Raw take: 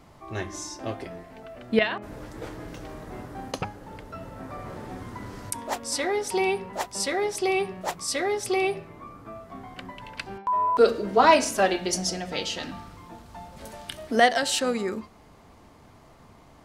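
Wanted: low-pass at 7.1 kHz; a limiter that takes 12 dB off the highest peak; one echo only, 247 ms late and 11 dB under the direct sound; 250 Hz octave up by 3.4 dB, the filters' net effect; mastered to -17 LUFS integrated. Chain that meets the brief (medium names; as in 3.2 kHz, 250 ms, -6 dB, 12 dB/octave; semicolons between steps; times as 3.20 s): low-pass 7.1 kHz; peaking EQ 250 Hz +4.5 dB; peak limiter -16.5 dBFS; delay 247 ms -11 dB; trim +12 dB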